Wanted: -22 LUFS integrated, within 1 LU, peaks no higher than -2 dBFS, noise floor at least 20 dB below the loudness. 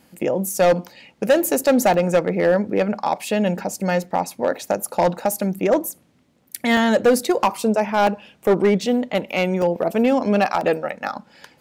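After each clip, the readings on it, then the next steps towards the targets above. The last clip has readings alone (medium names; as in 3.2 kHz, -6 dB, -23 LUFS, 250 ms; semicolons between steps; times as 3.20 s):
clipped samples 2.2%; clipping level -10.0 dBFS; dropouts 6; longest dropout 1.6 ms; loudness -20.0 LUFS; peak level -10.0 dBFS; loudness target -22.0 LUFS
-> clip repair -10 dBFS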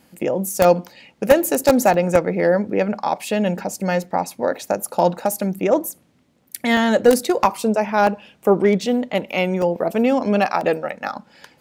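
clipped samples 0.0%; dropouts 6; longest dropout 1.6 ms
-> interpolate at 1.94/4.04/6.77/8.07/9.62/10.61 s, 1.6 ms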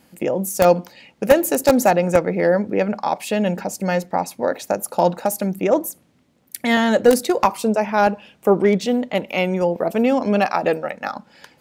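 dropouts 0; loudness -19.5 LUFS; peak level -1.0 dBFS; loudness target -22.0 LUFS
-> trim -2.5 dB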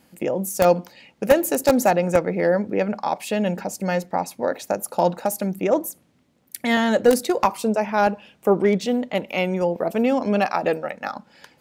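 loudness -22.0 LUFS; peak level -3.5 dBFS; noise floor -61 dBFS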